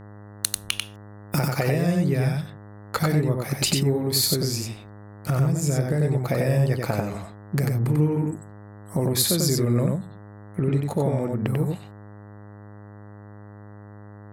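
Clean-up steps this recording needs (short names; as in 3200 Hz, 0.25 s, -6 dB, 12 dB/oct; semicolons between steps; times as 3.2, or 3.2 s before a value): de-hum 103.1 Hz, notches 19; inverse comb 93 ms -3 dB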